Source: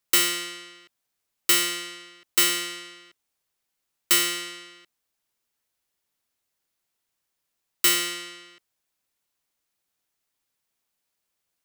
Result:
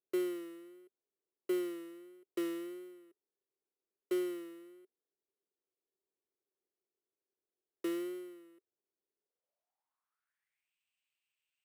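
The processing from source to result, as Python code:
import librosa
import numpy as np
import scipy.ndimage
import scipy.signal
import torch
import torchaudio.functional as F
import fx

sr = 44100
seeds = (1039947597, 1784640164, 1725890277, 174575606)

y = fx.vibrato(x, sr, rate_hz=1.5, depth_cents=60.0)
y = fx.filter_sweep_bandpass(y, sr, from_hz=390.0, to_hz=2700.0, start_s=9.19, end_s=10.73, q=5.8)
y = np.repeat(y[::4], 4)[:len(y)]
y = F.gain(torch.from_numpy(y), 5.0).numpy()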